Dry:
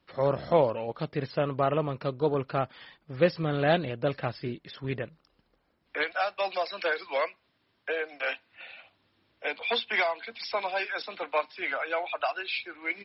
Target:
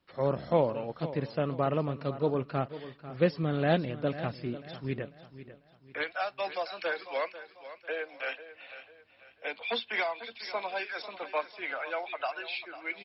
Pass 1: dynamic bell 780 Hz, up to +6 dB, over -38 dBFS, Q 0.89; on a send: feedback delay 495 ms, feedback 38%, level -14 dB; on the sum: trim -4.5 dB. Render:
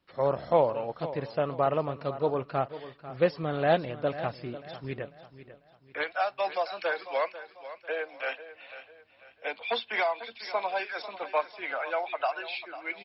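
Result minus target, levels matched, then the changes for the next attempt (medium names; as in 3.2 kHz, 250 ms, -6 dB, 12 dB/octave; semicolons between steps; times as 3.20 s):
250 Hz band -5.5 dB
change: dynamic bell 210 Hz, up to +6 dB, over -38 dBFS, Q 0.89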